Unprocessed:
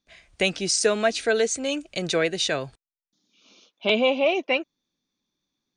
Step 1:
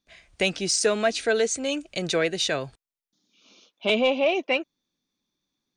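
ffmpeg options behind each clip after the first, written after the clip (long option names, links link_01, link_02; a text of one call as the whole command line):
ffmpeg -i in.wav -af "acontrast=70,volume=-7dB" out.wav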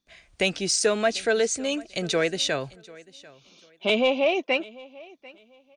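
ffmpeg -i in.wav -af "aecho=1:1:743|1486:0.0794|0.0199" out.wav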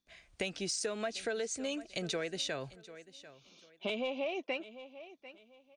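ffmpeg -i in.wav -af "acompressor=threshold=-27dB:ratio=6,volume=-6dB" out.wav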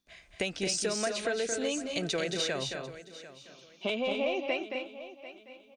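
ffmpeg -i in.wav -af "aecho=1:1:221.6|256.6:0.501|0.355,volume=4dB" out.wav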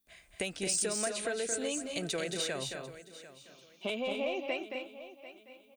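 ffmpeg -i in.wav -af "aexciter=amount=3.9:drive=6.3:freq=7900,volume=-3.5dB" out.wav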